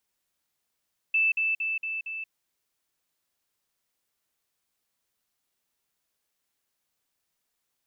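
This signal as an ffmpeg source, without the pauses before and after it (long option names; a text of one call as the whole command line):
ffmpeg -f lavfi -i "aevalsrc='pow(10,(-20-3*floor(t/0.23))/20)*sin(2*PI*2640*t)*clip(min(mod(t,0.23),0.18-mod(t,0.23))/0.005,0,1)':duration=1.15:sample_rate=44100" out.wav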